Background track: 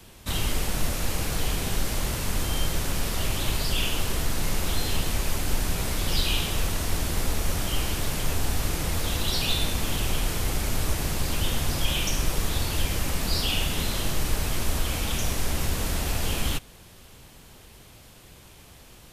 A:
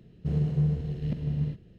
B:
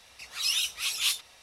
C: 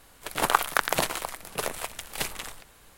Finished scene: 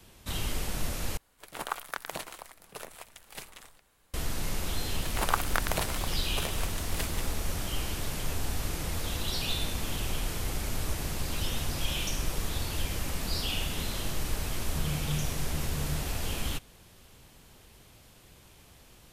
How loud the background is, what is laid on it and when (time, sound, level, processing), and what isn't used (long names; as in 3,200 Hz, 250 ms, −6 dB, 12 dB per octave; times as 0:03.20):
background track −6 dB
0:01.17: overwrite with C −12.5 dB
0:04.79: mix in C −6.5 dB
0:10.98: mix in B −11.5 dB + downward compressor, threshold −29 dBFS
0:14.51: mix in A −8.5 dB